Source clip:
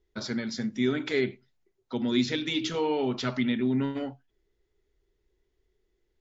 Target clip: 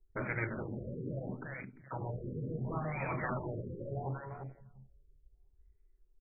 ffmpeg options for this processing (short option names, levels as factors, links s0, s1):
-af "highshelf=f=2100:g=7.5,afftfilt=real='re*lt(hypot(re,im),0.0794)':imag='im*lt(hypot(re,im),0.0794)':win_size=1024:overlap=0.75,bass=f=250:g=7,treble=f=4000:g=2,bandreject=f=72.44:t=h:w=4,bandreject=f=144.88:t=h:w=4,bandreject=f=217.32:t=h:w=4,bandreject=f=289.76:t=h:w=4,bandreject=f=362.2:t=h:w=4,bandreject=f=434.64:t=h:w=4,bandreject=f=507.08:t=h:w=4,bandreject=f=579.52:t=h:w=4,bandreject=f=651.96:t=h:w=4,bandreject=f=724.4:t=h:w=4,bandreject=f=796.84:t=h:w=4,bandreject=f=869.28:t=h:w=4,bandreject=f=941.72:t=h:w=4,bandreject=f=1014.16:t=h:w=4,adynamicsmooth=sensitivity=3.5:basefreq=5900,aecho=1:1:347|694|1041|1388:0.447|0.138|0.0429|0.0133,afwtdn=0.00398,afftfilt=real='re*lt(b*sr/1024,550*pow(2600/550,0.5+0.5*sin(2*PI*0.73*pts/sr)))':imag='im*lt(b*sr/1024,550*pow(2600/550,0.5+0.5*sin(2*PI*0.73*pts/sr)))':win_size=1024:overlap=0.75,volume=1.5"